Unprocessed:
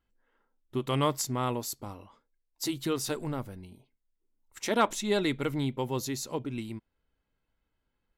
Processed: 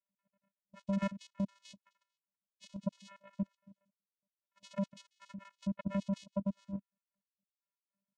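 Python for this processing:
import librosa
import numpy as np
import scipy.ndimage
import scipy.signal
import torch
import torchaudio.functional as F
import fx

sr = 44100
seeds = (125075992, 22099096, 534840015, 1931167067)

y = fx.spec_dropout(x, sr, seeds[0], share_pct=75)
y = fx.vocoder(y, sr, bands=4, carrier='square', carrier_hz=197.0)
y = fx.level_steps(y, sr, step_db=12)
y = F.gain(torch.from_numpy(y), 5.0).numpy()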